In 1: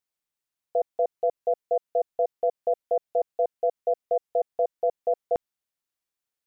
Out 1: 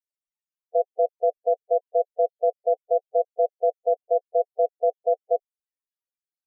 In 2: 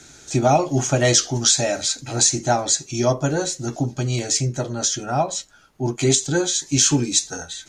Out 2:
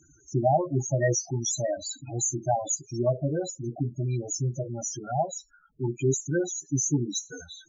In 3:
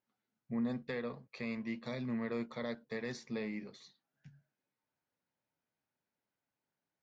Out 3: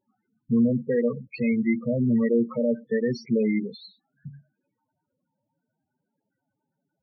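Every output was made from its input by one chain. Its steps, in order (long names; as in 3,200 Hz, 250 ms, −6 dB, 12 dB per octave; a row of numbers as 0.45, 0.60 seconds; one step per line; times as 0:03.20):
dynamic equaliser 250 Hz, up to −4 dB, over −39 dBFS, Q 4.3
spectral peaks only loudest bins 8
normalise the peak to −12 dBFS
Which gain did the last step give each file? +3.0, −4.5, +17.0 decibels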